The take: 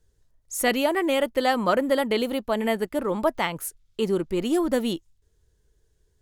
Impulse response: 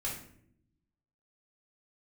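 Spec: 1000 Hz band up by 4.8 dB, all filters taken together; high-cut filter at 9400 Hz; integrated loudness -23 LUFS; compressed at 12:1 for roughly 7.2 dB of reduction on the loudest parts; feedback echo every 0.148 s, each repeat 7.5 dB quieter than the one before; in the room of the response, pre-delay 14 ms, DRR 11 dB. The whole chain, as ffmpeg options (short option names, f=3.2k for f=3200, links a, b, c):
-filter_complex "[0:a]lowpass=9.4k,equalizer=f=1k:t=o:g=6.5,acompressor=threshold=-21dB:ratio=12,aecho=1:1:148|296|444|592|740:0.422|0.177|0.0744|0.0312|0.0131,asplit=2[a][b];[1:a]atrim=start_sample=2205,adelay=14[c];[b][c]afir=irnorm=-1:irlink=0,volume=-13.5dB[d];[a][d]amix=inputs=2:normalize=0,volume=3dB"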